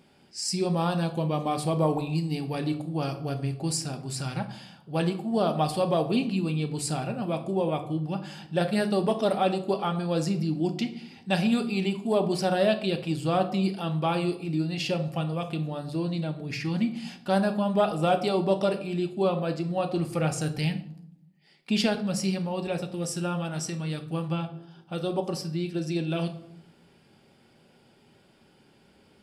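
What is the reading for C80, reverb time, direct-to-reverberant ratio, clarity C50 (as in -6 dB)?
15.5 dB, 0.70 s, 6.0 dB, 12.5 dB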